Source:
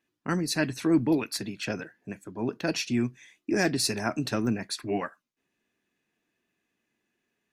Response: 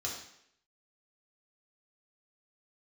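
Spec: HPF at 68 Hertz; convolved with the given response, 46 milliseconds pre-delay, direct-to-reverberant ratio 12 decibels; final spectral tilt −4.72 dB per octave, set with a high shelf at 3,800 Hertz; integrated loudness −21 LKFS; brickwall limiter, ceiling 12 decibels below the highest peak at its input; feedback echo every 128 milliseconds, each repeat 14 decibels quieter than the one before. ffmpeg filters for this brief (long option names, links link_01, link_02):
-filter_complex "[0:a]highpass=68,highshelf=frequency=3800:gain=-5,alimiter=limit=-23.5dB:level=0:latency=1,aecho=1:1:128|256:0.2|0.0399,asplit=2[link_01][link_02];[1:a]atrim=start_sample=2205,adelay=46[link_03];[link_02][link_03]afir=irnorm=-1:irlink=0,volume=-14.5dB[link_04];[link_01][link_04]amix=inputs=2:normalize=0,volume=13dB"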